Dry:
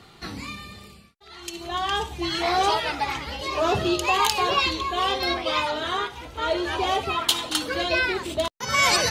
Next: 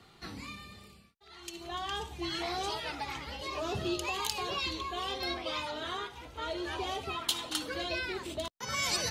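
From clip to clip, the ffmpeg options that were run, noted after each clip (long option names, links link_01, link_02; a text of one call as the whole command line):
ffmpeg -i in.wav -filter_complex "[0:a]acrossover=split=360|3000[link_01][link_02][link_03];[link_02]acompressor=threshold=-27dB:ratio=6[link_04];[link_01][link_04][link_03]amix=inputs=3:normalize=0,volume=-8.5dB" out.wav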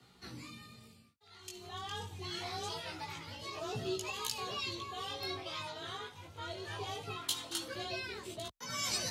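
ffmpeg -i in.wav -af "afreqshift=25,bass=frequency=250:gain=4,treble=frequency=4000:gain=5,flanger=delay=16:depth=4.5:speed=0.24,volume=-3.5dB" out.wav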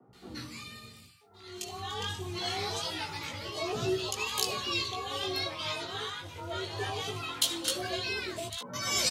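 ffmpeg -i in.wav -filter_complex "[0:a]acrossover=split=160|1000[link_01][link_02][link_03];[link_01]adelay=60[link_04];[link_03]adelay=130[link_05];[link_04][link_02][link_05]amix=inputs=3:normalize=0,volume=7.5dB" out.wav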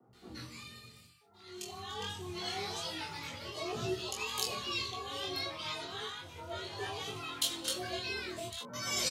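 ffmpeg -i in.wav -filter_complex "[0:a]asplit=2[link_01][link_02];[link_02]adelay=25,volume=-5dB[link_03];[link_01][link_03]amix=inputs=2:normalize=0,volume=-5.5dB" out.wav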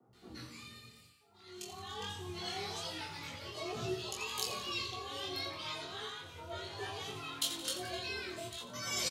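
ffmpeg -i in.wav -af "aecho=1:1:86|172|258|344|430|516:0.266|0.138|0.0719|0.0374|0.0195|0.0101,volume=-2.5dB" out.wav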